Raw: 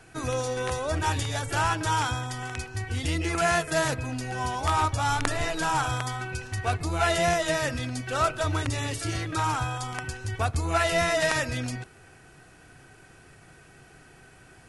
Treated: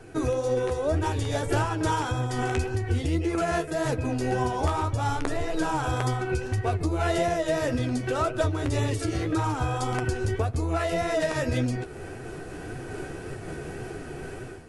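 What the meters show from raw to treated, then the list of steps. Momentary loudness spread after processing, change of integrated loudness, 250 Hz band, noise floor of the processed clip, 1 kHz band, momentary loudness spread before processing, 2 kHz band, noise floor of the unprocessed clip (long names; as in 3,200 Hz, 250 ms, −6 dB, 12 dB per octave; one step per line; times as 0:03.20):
11 LU, −0.5 dB, +5.5 dB, −39 dBFS, −2.0 dB, 9 LU, −4.5 dB, −53 dBFS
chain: parametric band 400 Hz +13 dB 1.6 octaves
automatic gain control
low-shelf EQ 110 Hz +10.5 dB
flanger 1.8 Hz, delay 7.5 ms, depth 7.2 ms, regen +42%
downward compressor, threshold −24 dBFS, peak gain reduction 13 dB
amplitude modulation by smooth noise, depth 55%
level +3 dB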